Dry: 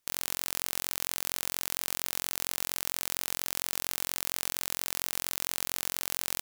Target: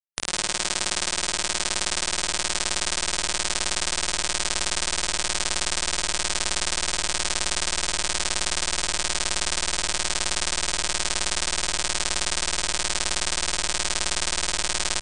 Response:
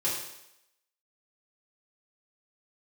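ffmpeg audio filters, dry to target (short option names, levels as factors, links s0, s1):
-filter_complex "[0:a]asetrate=18846,aresample=44100,afftfilt=real='re*gte(hypot(re,im),0.00891)':imag='im*gte(hypot(re,im),0.00891)':win_size=1024:overlap=0.75,asplit=2[s0][s1];[s1]adelay=19,volume=0.596[s2];[s0][s2]amix=inputs=2:normalize=0,asplit=2[s3][s4];[s4]aecho=0:1:47|100|111|167|184|453:0.224|0.562|0.501|0.668|0.335|0.316[s5];[s3][s5]amix=inputs=2:normalize=0,asubboost=boost=5:cutoff=79,volume=1.41"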